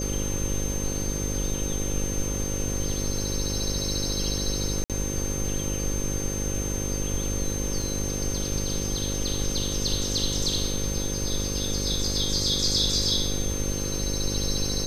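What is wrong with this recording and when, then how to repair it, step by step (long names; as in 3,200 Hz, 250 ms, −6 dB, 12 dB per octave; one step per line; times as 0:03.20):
mains buzz 50 Hz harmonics 11 −31 dBFS
whistle 6,300 Hz −32 dBFS
0:04.84–0:04.90: drop-out 57 ms
0:07.82: drop-out 2.5 ms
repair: notch filter 6,300 Hz, Q 30
hum removal 50 Hz, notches 11
repair the gap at 0:04.84, 57 ms
repair the gap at 0:07.82, 2.5 ms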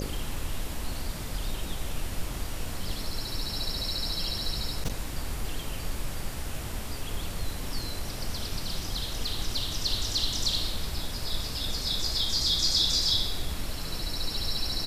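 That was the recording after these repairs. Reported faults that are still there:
none of them is left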